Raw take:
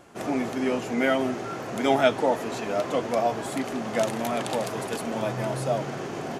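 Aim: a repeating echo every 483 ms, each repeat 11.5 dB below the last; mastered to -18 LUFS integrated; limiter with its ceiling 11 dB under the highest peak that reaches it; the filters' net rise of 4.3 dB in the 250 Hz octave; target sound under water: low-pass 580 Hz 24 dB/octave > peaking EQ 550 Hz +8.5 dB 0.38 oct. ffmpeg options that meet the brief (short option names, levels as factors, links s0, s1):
-af "equalizer=f=250:t=o:g=4.5,alimiter=limit=0.141:level=0:latency=1,lowpass=f=580:w=0.5412,lowpass=f=580:w=1.3066,equalizer=f=550:t=o:w=0.38:g=8.5,aecho=1:1:483|966|1449:0.266|0.0718|0.0194,volume=2.82"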